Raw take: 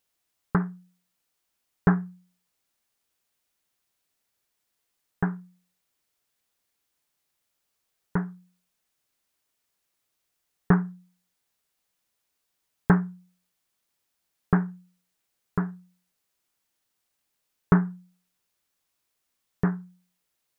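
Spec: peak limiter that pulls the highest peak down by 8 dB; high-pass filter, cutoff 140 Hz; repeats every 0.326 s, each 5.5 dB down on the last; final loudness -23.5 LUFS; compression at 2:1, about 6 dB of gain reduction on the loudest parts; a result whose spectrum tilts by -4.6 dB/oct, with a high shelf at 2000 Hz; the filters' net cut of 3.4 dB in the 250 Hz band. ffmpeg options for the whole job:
-af "highpass=140,equalizer=f=250:t=o:g=-4,highshelf=f=2k:g=8.5,acompressor=threshold=-27dB:ratio=2,alimiter=limit=-18.5dB:level=0:latency=1,aecho=1:1:326|652|978|1304|1630|1956|2282:0.531|0.281|0.149|0.079|0.0419|0.0222|0.0118,volume=16dB"

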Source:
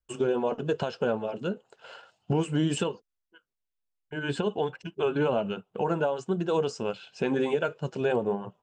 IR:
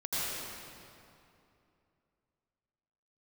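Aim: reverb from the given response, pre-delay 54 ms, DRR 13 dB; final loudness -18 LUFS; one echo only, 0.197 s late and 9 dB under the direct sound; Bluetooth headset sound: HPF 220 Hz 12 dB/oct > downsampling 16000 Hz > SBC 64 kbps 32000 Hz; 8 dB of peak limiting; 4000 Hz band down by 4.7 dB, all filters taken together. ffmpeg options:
-filter_complex "[0:a]equalizer=f=4k:t=o:g=-7.5,alimiter=limit=-23.5dB:level=0:latency=1,aecho=1:1:197:0.355,asplit=2[a][b];[1:a]atrim=start_sample=2205,adelay=54[c];[b][c]afir=irnorm=-1:irlink=0,volume=-20dB[d];[a][d]amix=inputs=2:normalize=0,highpass=220,aresample=16000,aresample=44100,volume=16dB" -ar 32000 -c:a sbc -b:a 64k

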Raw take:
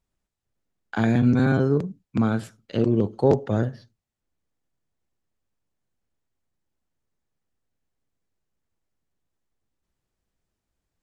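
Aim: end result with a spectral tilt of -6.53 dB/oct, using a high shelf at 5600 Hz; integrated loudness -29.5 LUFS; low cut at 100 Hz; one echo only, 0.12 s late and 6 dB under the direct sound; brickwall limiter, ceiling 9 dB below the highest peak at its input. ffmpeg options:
-af "highpass=100,highshelf=f=5.6k:g=4.5,alimiter=limit=-14.5dB:level=0:latency=1,aecho=1:1:120:0.501,volume=-4.5dB"

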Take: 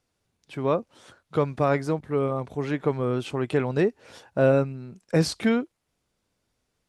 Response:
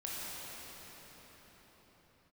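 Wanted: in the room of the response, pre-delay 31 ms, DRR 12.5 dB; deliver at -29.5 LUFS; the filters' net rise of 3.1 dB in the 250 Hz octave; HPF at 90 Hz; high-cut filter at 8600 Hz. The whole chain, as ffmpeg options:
-filter_complex "[0:a]highpass=90,lowpass=8.6k,equalizer=f=250:t=o:g=4,asplit=2[a][b];[1:a]atrim=start_sample=2205,adelay=31[c];[b][c]afir=irnorm=-1:irlink=0,volume=-15.5dB[d];[a][d]amix=inputs=2:normalize=0,volume=-5.5dB"

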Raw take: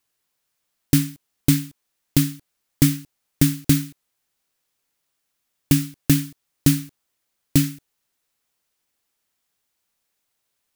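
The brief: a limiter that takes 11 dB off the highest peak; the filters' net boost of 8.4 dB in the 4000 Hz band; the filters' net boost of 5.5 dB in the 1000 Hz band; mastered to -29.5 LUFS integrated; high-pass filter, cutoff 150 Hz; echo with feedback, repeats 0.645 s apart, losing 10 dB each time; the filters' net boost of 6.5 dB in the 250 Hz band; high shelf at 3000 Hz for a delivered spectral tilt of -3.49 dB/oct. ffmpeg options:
-af "highpass=150,equalizer=f=250:t=o:g=8,equalizer=f=1k:t=o:g=6,highshelf=f=3k:g=4,equalizer=f=4k:t=o:g=7,alimiter=limit=-7.5dB:level=0:latency=1,aecho=1:1:645|1290|1935|2580:0.316|0.101|0.0324|0.0104,volume=-6.5dB"

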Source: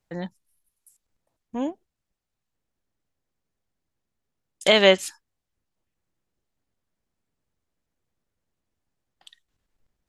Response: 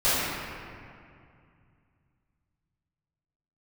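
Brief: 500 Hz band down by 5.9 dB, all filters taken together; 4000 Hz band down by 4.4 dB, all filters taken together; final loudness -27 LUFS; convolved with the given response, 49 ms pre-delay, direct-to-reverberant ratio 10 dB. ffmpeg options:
-filter_complex "[0:a]equalizer=f=500:t=o:g=-7.5,equalizer=f=4k:t=o:g=-6.5,asplit=2[a][b];[1:a]atrim=start_sample=2205,adelay=49[c];[b][c]afir=irnorm=-1:irlink=0,volume=-27.5dB[d];[a][d]amix=inputs=2:normalize=0,volume=-1dB"

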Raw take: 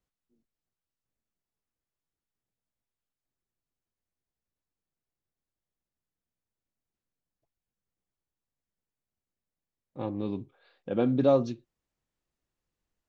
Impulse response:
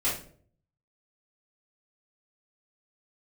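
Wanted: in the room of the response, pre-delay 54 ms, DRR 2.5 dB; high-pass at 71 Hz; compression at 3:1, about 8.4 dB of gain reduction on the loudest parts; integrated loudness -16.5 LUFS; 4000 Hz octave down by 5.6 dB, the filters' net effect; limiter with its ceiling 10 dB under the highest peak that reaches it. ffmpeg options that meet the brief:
-filter_complex "[0:a]highpass=71,equalizer=f=4k:t=o:g=-6.5,acompressor=threshold=-28dB:ratio=3,alimiter=level_in=4.5dB:limit=-24dB:level=0:latency=1,volume=-4.5dB,asplit=2[a][b];[1:a]atrim=start_sample=2205,adelay=54[c];[b][c]afir=irnorm=-1:irlink=0,volume=-11.5dB[d];[a][d]amix=inputs=2:normalize=0,volume=21.5dB"

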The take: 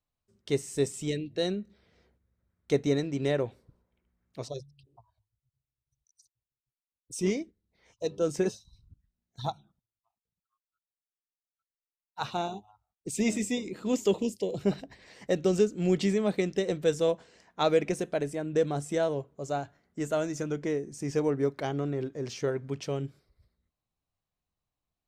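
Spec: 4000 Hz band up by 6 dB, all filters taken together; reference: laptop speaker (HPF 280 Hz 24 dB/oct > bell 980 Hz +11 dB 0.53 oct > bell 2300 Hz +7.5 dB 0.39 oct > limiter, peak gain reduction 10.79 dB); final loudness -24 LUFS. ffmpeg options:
-af "highpass=f=280:w=0.5412,highpass=f=280:w=1.3066,equalizer=f=980:t=o:w=0.53:g=11,equalizer=f=2.3k:t=o:w=0.39:g=7.5,equalizer=f=4k:t=o:g=6,volume=8.5dB,alimiter=limit=-10.5dB:level=0:latency=1"

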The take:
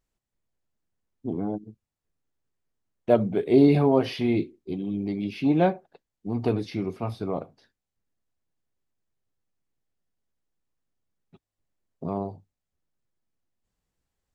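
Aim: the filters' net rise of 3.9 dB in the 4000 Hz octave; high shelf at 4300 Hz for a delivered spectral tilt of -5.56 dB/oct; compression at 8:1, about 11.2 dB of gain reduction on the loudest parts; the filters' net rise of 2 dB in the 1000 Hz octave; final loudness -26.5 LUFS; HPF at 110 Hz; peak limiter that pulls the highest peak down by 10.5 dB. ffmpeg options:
-af "highpass=110,equalizer=f=1k:t=o:g=3,equalizer=f=4k:t=o:g=8.5,highshelf=f=4.3k:g=-7,acompressor=threshold=-24dB:ratio=8,volume=8dB,alimiter=limit=-16dB:level=0:latency=1"

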